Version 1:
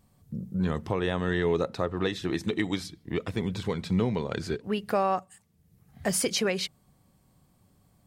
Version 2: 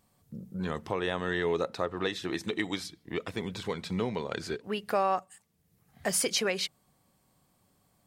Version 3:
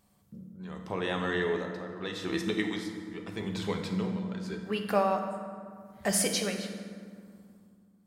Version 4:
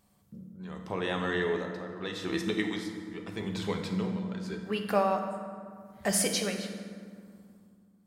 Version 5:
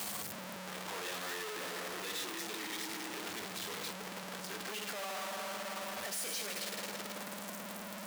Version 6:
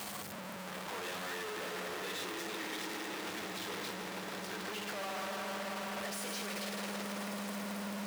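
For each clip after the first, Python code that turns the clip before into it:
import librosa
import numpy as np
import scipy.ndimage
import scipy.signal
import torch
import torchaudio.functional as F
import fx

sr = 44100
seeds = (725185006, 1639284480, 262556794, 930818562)

y1 = fx.low_shelf(x, sr, hz=250.0, db=-11.0)
y2 = y1 * (1.0 - 0.8 / 2.0 + 0.8 / 2.0 * np.cos(2.0 * np.pi * 0.82 * (np.arange(len(y1)) / sr)))
y2 = fx.rev_fdn(y2, sr, rt60_s=2.1, lf_ratio=1.55, hf_ratio=0.55, size_ms=30.0, drr_db=3.0)
y3 = y2
y4 = np.sign(y3) * np.sqrt(np.mean(np.square(y3)))
y4 = fx.highpass(y4, sr, hz=790.0, slope=6)
y4 = y4 * librosa.db_to_amplitude(-3.5)
y5 = fx.high_shelf(y4, sr, hz=4200.0, db=-7.0)
y5 = fx.echo_swell(y5, sr, ms=148, loudest=5, wet_db=-14)
y5 = y5 * librosa.db_to_amplitude(1.0)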